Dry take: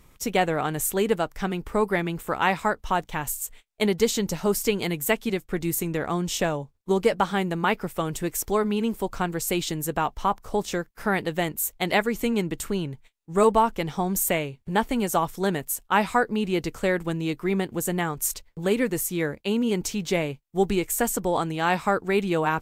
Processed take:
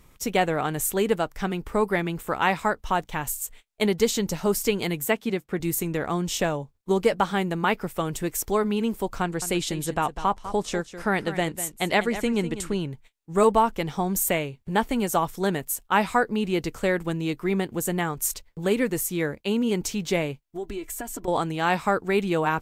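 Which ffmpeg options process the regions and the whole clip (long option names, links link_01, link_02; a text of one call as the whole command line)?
ffmpeg -i in.wav -filter_complex "[0:a]asettb=1/sr,asplit=3[link_01][link_02][link_03];[link_01]atrim=end=5.064[link_04];[link_02]atrim=start=5.06:end=5.6,asetpts=PTS-STARTPTS,afade=type=in:duration=0.004:curve=qsin,afade=type=out:start_time=0.536:duration=0.004:curve=qsin,highpass=77,highshelf=frequency=4000:gain=-6[link_05];[link_03]atrim=start=5.596[link_06];[link_04][link_05]acrossfade=duration=0.004:curve1=hsin:curve2=qsin[link_07];[link_07][link_06]acrossfade=duration=0.004:curve1=qsin:curve2=hsin,asettb=1/sr,asplit=3[link_08][link_09][link_10];[link_08]atrim=end=9.224[link_11];[link_09]atrim=start=9.22:end=12.8,asetpts=PTS-STARTPTS,afade=type=in:duration=0.004:curve=qsin,afade=type=out:start_time=3.576:duration=0.004:curve=qsin,lowpass=frequency=11000:width=0.5412,lowpass=frequency=11000:width=1.3066,aecho=1:1:199:0.237,atrim=end_sample=157878[link_12];[link_10]atrim=start=12.796[link_13];[link_11][link_12]acrossfade=duration=0.004:curve1=hsin:curve2=qsin[link_14];[link_14][link_13]acrossfade=duration=0.004:curve1=qsin:curve2=hsin,asettb=1/sr,asplit=3[link_15][link_16][link_17];[link_15]atrim=end=20.454[link_18];[link_16]atrim=start=20.45:end=21.28,asetpts=PTS-STARTPTS,afade=type=in:duration=0.004:curve=qsin,afade=type=out:start_time=0.826:duration=0.004:curve=qsin,highshelf=frequency=4500:gain=-4.5,aecho=1:1:3:0.68,atrim=end_sample=36603,acompressor=threshold=-31dB:ratio=4:attack=3.2:release=140:knee=1:detection=peak[link_19];[link_17]atrim=start=21.276[link_20];[link_18][link_19]acrossfade=duration=0.004:curve1=hsin:curve2=qsin[link_21];[link_21][link_20]acrossfade=duration=0.004:curve1=qsin:curve2=hsin" out.wav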